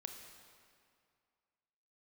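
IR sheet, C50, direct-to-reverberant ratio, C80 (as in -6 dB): 5.5 dB, 4.0 dB, 6.5 dB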